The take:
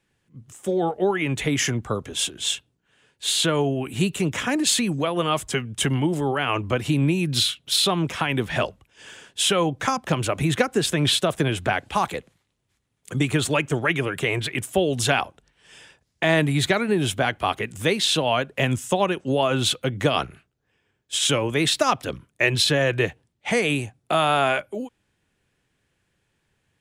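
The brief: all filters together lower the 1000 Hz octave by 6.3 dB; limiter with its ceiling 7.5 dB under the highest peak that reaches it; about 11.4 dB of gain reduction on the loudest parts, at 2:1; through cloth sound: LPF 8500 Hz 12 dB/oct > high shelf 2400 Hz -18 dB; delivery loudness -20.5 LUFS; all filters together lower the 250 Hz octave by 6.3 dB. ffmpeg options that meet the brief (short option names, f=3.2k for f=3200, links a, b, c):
-af "equalizer=f=250:t=o:g=-9,equalizer=f=1k:t=o:g=-4.5,acompressor=threshold=-39dB:ratio=2,alimiter=level_in=1dB:limit=-24dB:level=0:latency=1,volume=-1dB,lowpass=8.5k,highshelf=f=2.4k:g=-18,volume=19dB"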